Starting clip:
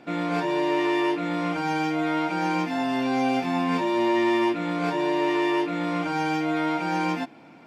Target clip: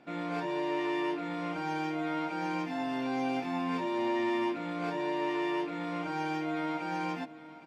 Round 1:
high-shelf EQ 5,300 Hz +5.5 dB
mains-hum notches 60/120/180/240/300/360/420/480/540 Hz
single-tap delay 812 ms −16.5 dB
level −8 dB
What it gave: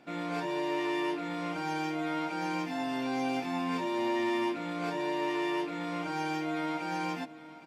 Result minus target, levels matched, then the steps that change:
8,000 Hz band +6.0 dB
change: high-shelf EQ 5,300 Hz −4 dB

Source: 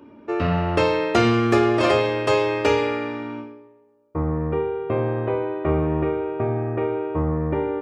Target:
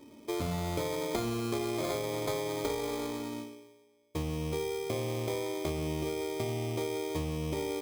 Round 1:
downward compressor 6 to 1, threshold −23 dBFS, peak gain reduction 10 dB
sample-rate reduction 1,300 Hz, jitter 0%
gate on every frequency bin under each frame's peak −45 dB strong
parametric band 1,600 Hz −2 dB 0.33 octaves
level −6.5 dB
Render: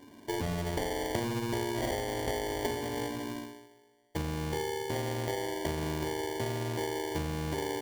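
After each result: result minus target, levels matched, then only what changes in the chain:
sample-rate reduction: distortion +8 dB; 2,000 Hz band +3.5 dB
change: sample-rate reduction 2,800 Hz, jitter 0%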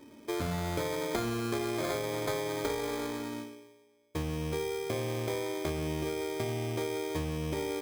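2,000 Hz band +2.5 dB
change: parametric band 1,600 Hz −13.5 dB 0.33 octaves

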